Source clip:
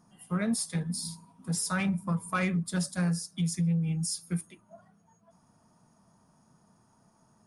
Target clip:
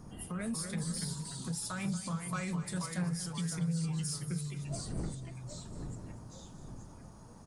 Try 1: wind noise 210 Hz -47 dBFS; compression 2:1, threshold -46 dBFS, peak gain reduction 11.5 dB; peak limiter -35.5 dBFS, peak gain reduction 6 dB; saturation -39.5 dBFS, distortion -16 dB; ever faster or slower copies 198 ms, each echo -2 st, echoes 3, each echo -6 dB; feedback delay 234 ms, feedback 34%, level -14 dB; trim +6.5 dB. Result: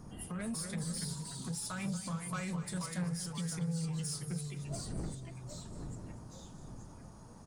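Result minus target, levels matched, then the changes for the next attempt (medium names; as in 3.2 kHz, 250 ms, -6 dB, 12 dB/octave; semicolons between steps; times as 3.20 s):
saturation: distortion +12 dB
change: saturation -32 dBFS, distortion -28 dB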